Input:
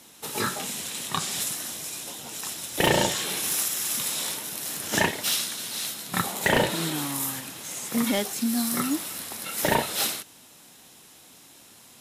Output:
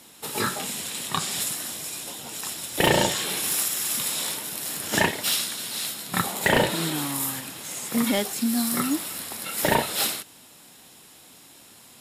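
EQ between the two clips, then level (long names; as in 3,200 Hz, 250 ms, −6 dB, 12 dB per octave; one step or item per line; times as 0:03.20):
notch filter 6,100 Hz, Q 10
+1.5 dB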